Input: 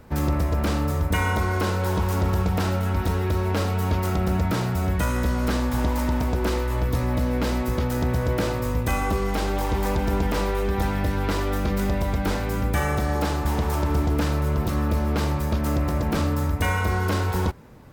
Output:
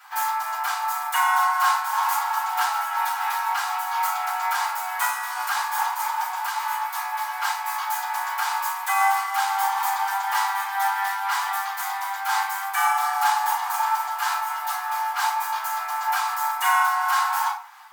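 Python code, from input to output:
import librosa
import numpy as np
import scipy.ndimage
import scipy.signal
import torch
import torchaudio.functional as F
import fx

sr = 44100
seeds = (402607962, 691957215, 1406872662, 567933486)

y = scipy.signal.sosfilt(scipy.signal.butter(16, 770.0, 'highpass', fs=sr, output='sos'), x)
y = fx.dynamic_eq(y, sr, hz=3200.0, q=0.71, threshold_db=-48.0, ratio=4.0, max_db=-7)
y = fx.room_shoebox(y, sr, seeds[0], volume_m3=230.0, walls='furnished', distance_m=6.0)
y = fx.am_noise(y, sr, seeds[1], hz=5.7, depth_pct=55)
y = y * 10.0 ** (2.5 / 20.0)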